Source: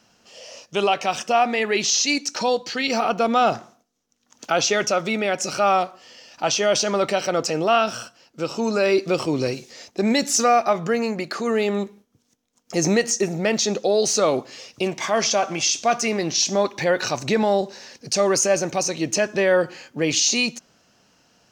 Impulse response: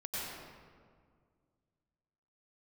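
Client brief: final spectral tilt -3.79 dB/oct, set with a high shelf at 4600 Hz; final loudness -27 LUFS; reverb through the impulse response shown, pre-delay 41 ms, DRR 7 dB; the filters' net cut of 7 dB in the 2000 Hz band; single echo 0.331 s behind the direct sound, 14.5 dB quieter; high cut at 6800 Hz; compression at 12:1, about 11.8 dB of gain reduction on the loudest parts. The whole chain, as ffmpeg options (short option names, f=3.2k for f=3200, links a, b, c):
-filter_complex "[0:a]lowpass=6.8k,equalizer=f=2k:t=o:g=-8,highshelf=f=4.6k:g=-6.5,acompressor=threshold=-27dB:ratio=12,aecho=1:1:331:0.188,asplit=2[a][b];[1:a]atrim=start_sample=2205,adelay=41[c];[b][c]afir=irnorm=-1:irlink=0,volume=-10dB[d];[a][d]amix=inputs=2:normalize=0,volume=4dB"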